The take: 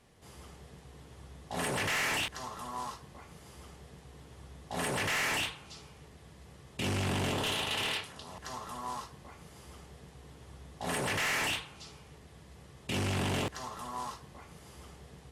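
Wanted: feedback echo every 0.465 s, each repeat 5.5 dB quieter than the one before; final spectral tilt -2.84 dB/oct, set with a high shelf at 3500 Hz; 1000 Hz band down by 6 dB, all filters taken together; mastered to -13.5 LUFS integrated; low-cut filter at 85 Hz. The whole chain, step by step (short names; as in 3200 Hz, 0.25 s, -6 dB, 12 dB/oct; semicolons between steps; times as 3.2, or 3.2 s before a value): HPF 85 Hz; bell 1000 Hz -8.5 dB; high shelf 3500 Hz +8.5 dB; feedback echo 0.465 s, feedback 53%, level -5.5 dB; gain +18 dB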